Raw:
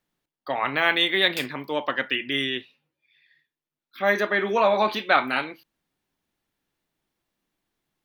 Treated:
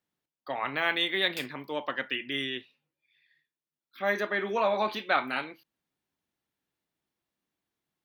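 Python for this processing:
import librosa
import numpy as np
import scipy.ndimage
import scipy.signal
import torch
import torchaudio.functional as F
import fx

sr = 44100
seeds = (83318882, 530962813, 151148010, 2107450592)

y = scipy.signal.sosfilt(scipy.signal.butter(2, 58.0, 'highpass', fs=sr, output='sos'), x)
y = y * librosa.db_to_amplitude(-6.5)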